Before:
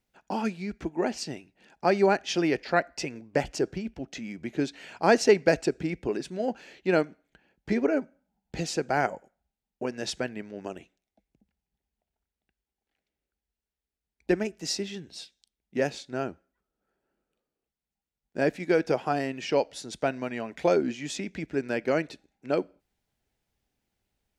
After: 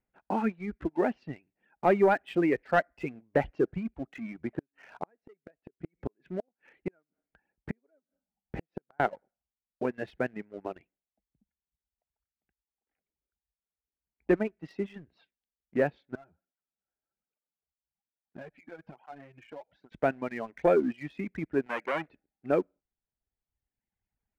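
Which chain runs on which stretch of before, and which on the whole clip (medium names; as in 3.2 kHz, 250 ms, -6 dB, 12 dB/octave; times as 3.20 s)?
4.41–9.00 s: treble shelf 2.8 kHz -5.5 dB + inverted gate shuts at -21 dBFS, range -34 dB
16.15–19.92 s: comb 1.3 ms, depth 39% + compression 5:1, threshold -40 dBFS + cancelling through-zero flanger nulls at 1.2 Hz, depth 6 ms
21.66–22.08 s: high-pass 120 Hz + treble shelf 2.7 kHz +12 dB + transformer saturation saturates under 3.2 kHz
whole clip: low-pass 2.2 kHz 24 dB/octave; reverb removal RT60 1.5 s; waveshaping leveller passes 1; trim -2.5 dB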